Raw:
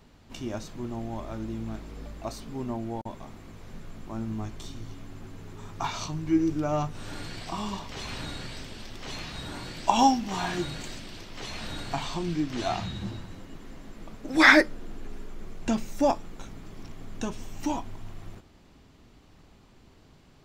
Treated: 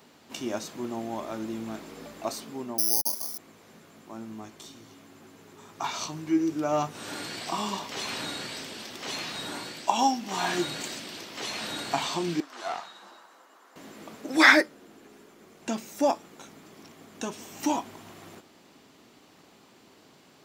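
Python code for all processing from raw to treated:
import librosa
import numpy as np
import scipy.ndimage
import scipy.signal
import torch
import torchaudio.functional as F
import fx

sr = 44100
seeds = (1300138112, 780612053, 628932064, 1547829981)

y = fx.chain(x, sr, fx.highpass(hz=160.0, slope=24),
    fx.resample_bad(factor=8, down='filtered', up='zero_stuff'), at=(2.78, 3.38))
y = fx.chain(y, sr, fx.highpass(hz=810.0, slope=12),
    fx.high_shelf_res(hz=1700.0, db=-7.5, q=1.5),
    fx.tube_stage(drive_db=30.0, bias=0.65), at=(12.4, 13.76))
y = scipy.signal.sosfilt(scipy.signal.butter(2, 250.0, 'highpass', fs=sr, output='sos'), y)
y = fx.high_shelf(y, sr, hz=7900.0, db=7.0)
y = fx.rider(y, sr, range_db=4, speed_s=0.5)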